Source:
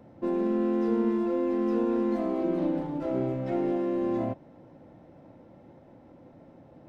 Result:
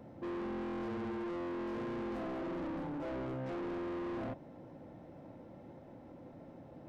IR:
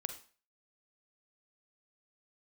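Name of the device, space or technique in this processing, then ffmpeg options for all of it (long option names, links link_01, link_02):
saturation between pre-emphasis and de-emphasis: -af "highshelf=frequency=3100:gain=9.5,asoftclip=type=tanh:threshold=-37.5dB,highshelf=frequency=3100:gain=-9.5"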